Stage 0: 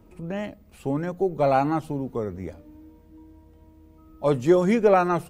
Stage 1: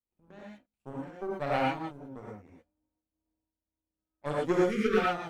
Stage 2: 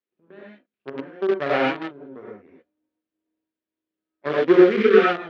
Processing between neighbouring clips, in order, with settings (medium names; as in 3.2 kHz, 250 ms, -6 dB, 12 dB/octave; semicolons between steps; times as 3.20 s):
power-law waveshaper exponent 2; spectral selection erased 4.58–4.97 s, 530–1100 Hz; gated-style reverb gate 140 ms rising, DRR -4.5 dB; trim -5.5 dB
in parallel at -4 dB: bit crusher 5-bit; on the sum: cabinet simulation 210–3700 Hz, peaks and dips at 390 Hz +9 dB, 840 Hz -8 dB, 1.7 kHz +4 dB; trim +4 dB